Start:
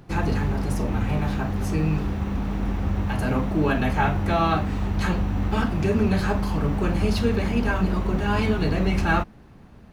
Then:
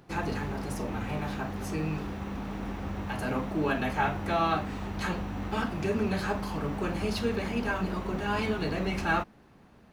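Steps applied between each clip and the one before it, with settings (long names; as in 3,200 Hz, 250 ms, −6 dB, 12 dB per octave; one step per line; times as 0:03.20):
low-shelf EQ 150 Hz −11.5 dB
level −4 dB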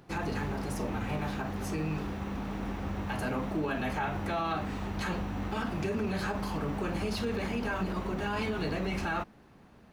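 brickwall limiter −23.5 dBFS, peak gain reduction 8.5 dB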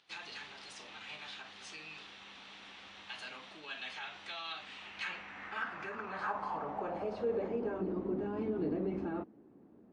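band-pass filter sweep 3,500 Hz → 320 Hz, 0:04.58–0:08.00
level +4.5 dB
MP3 48 kbit/s 22,050 Hz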